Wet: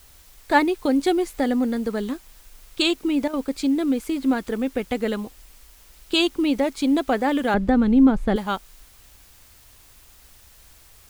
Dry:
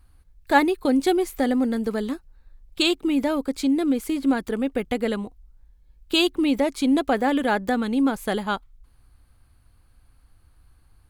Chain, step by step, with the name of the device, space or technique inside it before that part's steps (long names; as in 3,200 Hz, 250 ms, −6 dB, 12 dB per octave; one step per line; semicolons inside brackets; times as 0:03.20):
worn cassette (low-pass filter 9,800 Hz; tape wow and flutter; tape dropouts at 0:03.28, 53 ms −11 dB; white noise bed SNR 28 dB)
0:07.54–0:08.36: RIAA equalisation playback